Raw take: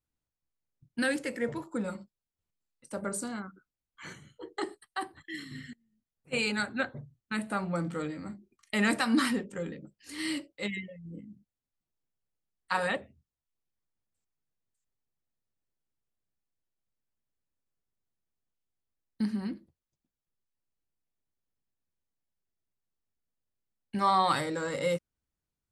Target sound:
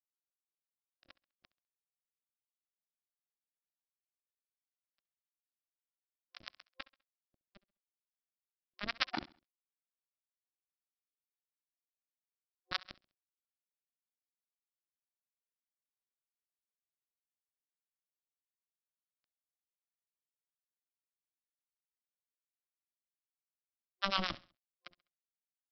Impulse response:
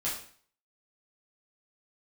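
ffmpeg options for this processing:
-filter_complex "[0:a]aresample=11025,acrusher=bits=2:mix=0:aa=0.5,aresample=44100,superequalizer=7b=0.355:9b=0.501,acrossover=split=590[link_01][link_02];[link_01]aeval=exprs='val(0)*(1-1/2+1/2*cos(2*PI*8.6*n/s))':channel_layout=same[link_03];[link_02]aeval=exprs='val(0)*(1-1/2-1/2*cos(2*PI*8.6*n/s))':channel_layout=same[link_04];[link_03][link_04]amix=inputs=2:normalize=0,aecho=1:1:67|134|201:0.1|0.036|0.013,volume=5.5dB"

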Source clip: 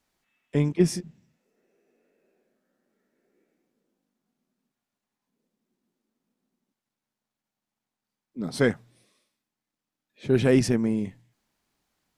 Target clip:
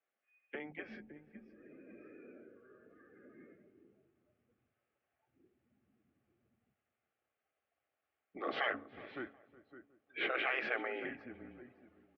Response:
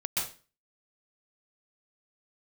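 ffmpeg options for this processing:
-filter_complex "[0:a]acompressor=threshold=-45dB:ratio=2,bandreject=frequency=60:width_type=h:width=6,bandreject=frequency=120:width_type=h:width=6,bandreject=frequency=180:width_type=h:width=6,bandreject=frequency=240:width_type=h:width=6,bandreject=frequency=300:width_type=h:width=6,bandreject=frequency=360:width_type=h:width=6,bandreject=frequency=420:width_type=h:width=6,asplit=2[link_01][link_02];[link_02]aecho=0:1:560|1120:0.0841|0.0194[link_03];[link_01][link_03]amix=inputs=2:normalize=0,dynaudnorm=framelen=130:gausssize=21:maxgain=13.5dB,afftfilt=real='re*lt(hypot(re,im),0.0794)':imag='im*lt(hypot(re,im),0.0794)':win_size=1024:overlap=0.75,afftdn=noise_reduction=16:noise_floor=-62,asplit=2[link_04][link_05];[link_05]adelay=366,lowpass=frequency=1100:poles=1,volume=-18dB,asplit=2[link_06][link_07];[link_07]adelay=366,lowpass=frequency=1100:poles=1,volume=0.45,asplit=2[link_08][link_09];[link_09]adelay=366,lowpass=frequency=1100:poles=1,volume=0.45,asplit=2[link_10][link_11];[link_11]adelay=366,lowpass=frequency=1100:poles=1,volume=0.45[link_12];[link_06][link_08][link_10][link_12]amix=inputs=4:normalize=0[link_13];[link_04][link_13]amix=inputs=2:normalize=0,aeval=exprs='(tanh(25.1*val(0)+0.25)-tanh(0.25))/25.1':channel_layout=same,asuperstop=centerf=1100:order=4:qfactor=6,highpass=frequency=460:width_type=q:width=0.5412,highpass=frequency=460:width_type=q:width=1.307,lowpass=frequency=2900:width_type=q:width=0.5176,lowpass=frequency=2900:width_type=q:width=0.7071,lowpass=frequency=2900:width_type=q:width=1.932,afreqshift=-140,volume=6.5dB"

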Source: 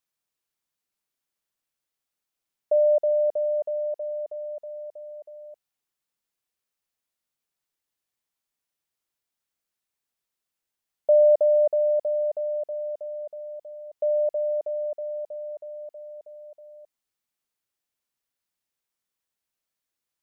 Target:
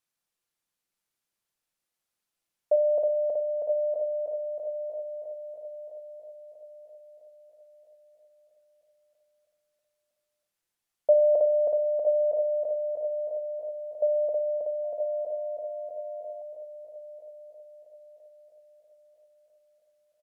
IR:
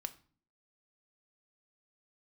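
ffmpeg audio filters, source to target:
-filter_complex "[0:a]aecho=1:1:978|1956|2934|3912|4890:0.398|0.171|0.0736|0.0317|0.0136[link_01];[1:a]atrim=start_sample=2205,atrim=end_sample=4410,asetrate=25578,aresample=44100[link_02];[link_01][link_02]afir=irnorm=-1:irlink=0,asettb=1/sr,asplit=3[link_03][link_04][link_05];[link_03]atrim=end=14.844[link_06];[link_04]atrim=start=14.84:end=16.42,asetpts=PTS-STARTPTS,afade=type=in:duration=0.004:curve=qsin,afade=type=out:start_time=1.576:duration=0.004:curve=qsin,aeval=exprs='val(0)+0.00562*sin(2*PI*700*n/s)':channel_layout=same[link_07];[link_05]atrim=start=16.416[link_08];[link_06][link_07]acrossfade=duration=0.004:curve1=hsin:curve2=qsin[link_09];[link_09][link_08]acrossfade=duration=0.004:curve1=qsin:curve2=hsin"

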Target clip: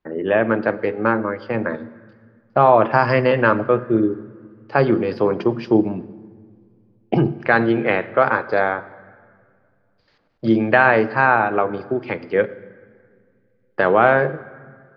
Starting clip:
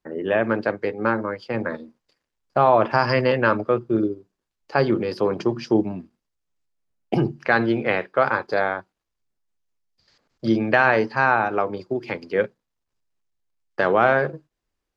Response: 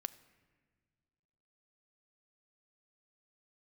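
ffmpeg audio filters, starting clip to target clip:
-filter_complex "[0:a]asplit=2[link_01][link_02];[1:a]atrim=start_sample=2205,asetrate=34398,aresample=44100,lowpass=3600[link_03];[link_02][link_03]afir=irnorm=-1:irlink=0,volume=14dB[link_04];[link_01][link_04]amix=inputs=2:normalize=0,volume=-11dB"

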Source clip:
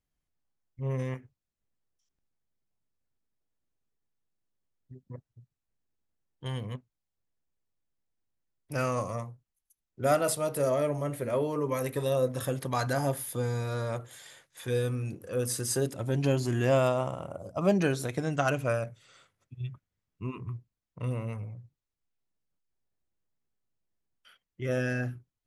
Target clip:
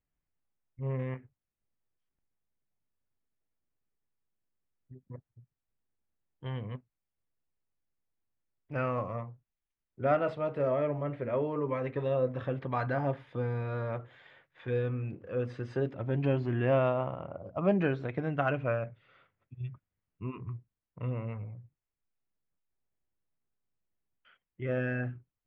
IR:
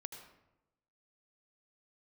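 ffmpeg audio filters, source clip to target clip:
-af "lowpass=frequency=2700:width=0.5412,lowpass=frequency=2700:width=1.3066,volume=-2dB"

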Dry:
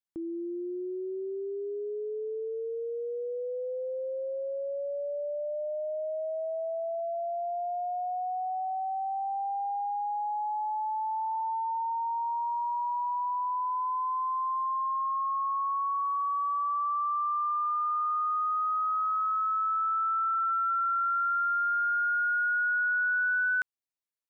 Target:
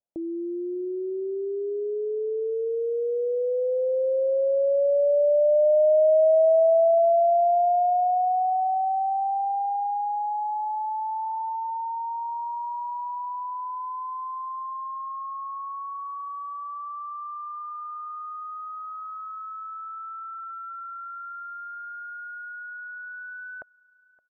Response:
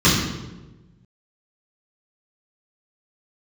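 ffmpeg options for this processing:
-filter_complex "[0:a]lowpass=frequency=640:width_type=q:width=4.9,asplit=2[link_01][link_02];[link_02]aecho=0:1:569|1138:0.0631|0.0183[link_03];[link_01][link_03]amix=inputs=2:normalize=0,volume=1.5dB"

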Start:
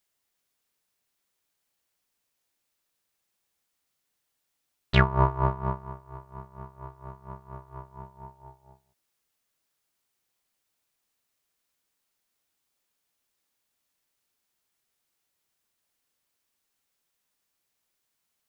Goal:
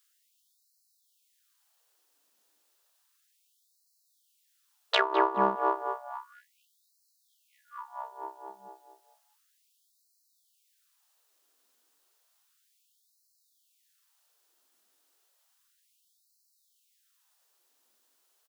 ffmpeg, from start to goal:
ffmpeg -i in.wav -filter_complex "[0:a]equalizer=frequency=2200:width=2.9:gain=-6.5,asplit=2[link_01][link_02];[link_02]adelay=207,lowpass=frequency=920:poles=1,volume=-5dB,asplit=2[link_03][link_04];[link_04]adelay=207,lowpass=frequency=920:poles=1,volume=0.48,asplit=2[link_05][link_06];[link_06]adelay=207,lowpass=frequency=920:poles=1,volume=0.48,asplit=2[link_07][link_08];[link_08]adelay=207,lowpass=frequency=920:poles=1,volume=0.48,asplit=2[link_09][link_10];[link_10]adelay=207,lowpass=frequency=920:poles=1,volume=0.48,asplit=2[link_11][link_12];[link_12]adelay=207,lowpass=frequency=920:poles=1,volume=0.48[link_13];[link_03][link_05][link_07][link_09][link_11][link_13]amix=inputs=6:normalize=0[link_14];[link_01][link_14]amix=inputs=2:normalize=0,acrossover=split=180[link_15][link_16];[link_16]acompressor=threshold=-27dB:ratio=10[link_17];[link_15][link_17]amix=inputs=2:normalize=0,afftfilt=real='re*gte(b*sr/1024,210*pow(4000/210,0.5+0.5*sin(2*PI*0.32*pts/sr)))':imag='im*gte(b*sr/1024,210*pow(4000/210,0.5+0.5*sin(2*PI*0.32*pts/sr)))':win_size=1024:overlap=0.75,volume=8dB" out.wav

